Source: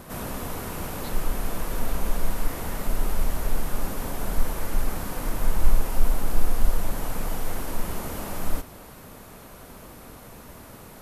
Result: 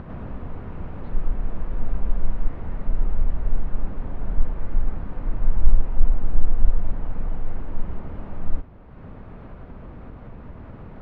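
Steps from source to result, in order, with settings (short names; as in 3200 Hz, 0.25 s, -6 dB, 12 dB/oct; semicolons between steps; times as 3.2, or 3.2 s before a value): Bessel low-pass 1800 Hz, order 4; low shelf 210 Hz +11.5 dB; upward compressor, threshold -22 dBFS; gain -7.5 dB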